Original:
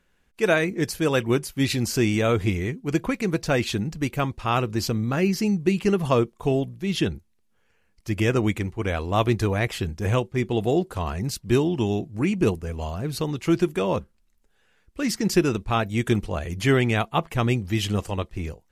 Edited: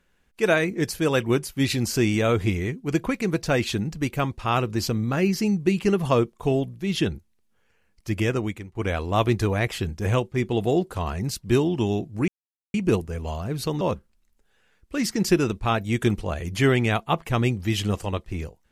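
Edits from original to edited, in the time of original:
0:08.13–0:08.75: fade out, to −17.5 dB
0:12.28: splice in silence 0.46 s
0:13.35–0:13.86: remove

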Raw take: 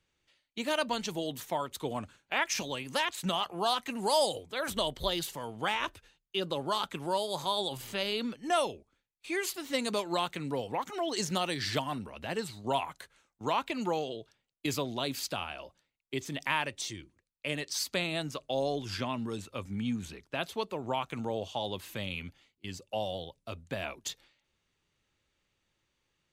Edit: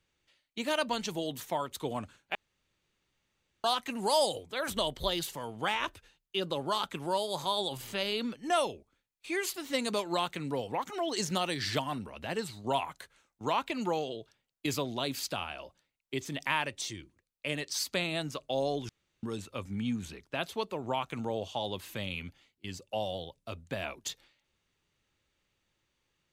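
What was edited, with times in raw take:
0:02.35–0:03.64: fill with room tone
0:18.89–0:19.23: fill with room tone

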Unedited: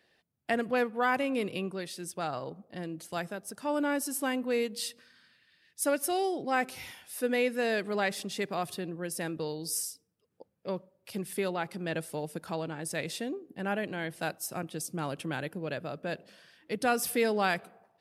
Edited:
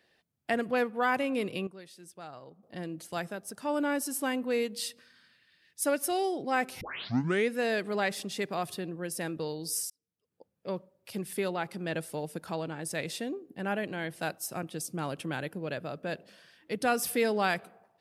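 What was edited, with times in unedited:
0:01.67–0:02.63: clip gain −11 dB
0:06.81: tape start 0.69 s
0:09.90–0:10.75: fade in

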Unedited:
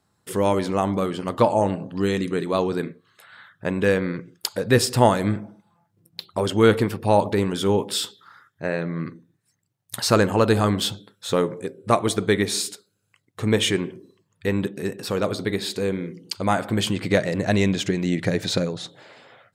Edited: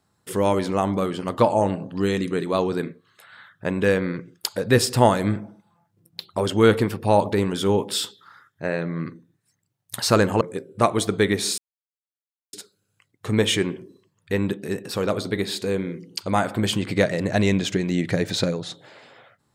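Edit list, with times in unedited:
0:10.41–0:11.50: remove
0:12.67: splice in silence 0.95 s

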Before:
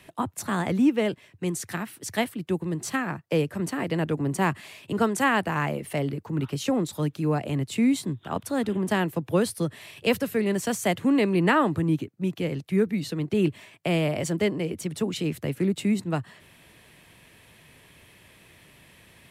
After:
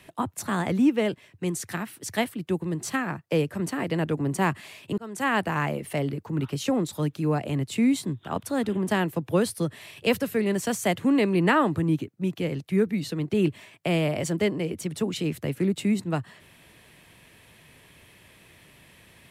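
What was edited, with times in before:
0:04.98–0:05.39: fade in

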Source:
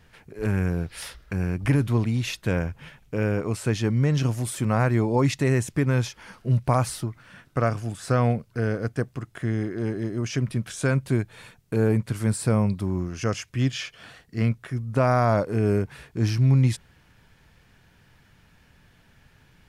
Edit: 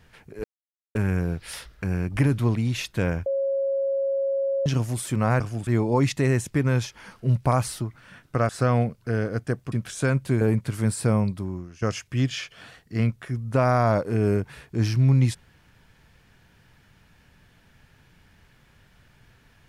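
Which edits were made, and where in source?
0:00.44: splice in silence 0.51 s
0:02.75–0:04.15: beep over 547 Hz −21.5 dBFS
0:07.71–0:07.98: move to 0:04.89
0:09.21–0:10.53: remove
0:11.22–0:11.83: remove
0:12.58–0:13.24: fade out, to −16 dB

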